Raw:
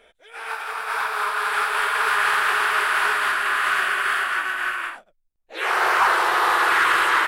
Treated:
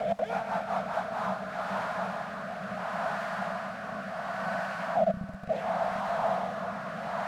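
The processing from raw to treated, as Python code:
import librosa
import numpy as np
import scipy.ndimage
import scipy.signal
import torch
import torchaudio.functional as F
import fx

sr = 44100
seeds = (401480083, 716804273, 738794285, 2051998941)

p1 = np.sign(x) * np.sqrt(np.mean(np.square(x)))
p2 = fx.mod_noise(p1, sr, seeds[0], snr_db=14)
p3 = p2 + fx.echo_single(p2, sr, ms=745, db=-10.0, dry=0)
p4 = fx.rotary_switch(p3, sr, hz=5.0, then_hz=0.7, switch_at_s=0.78)
p5 = fx.double_bandpass(p4, sr, hz=360.0, octaves=1.8)
y = F.gain(torch.from_numpy(p5), 8.0).numpy()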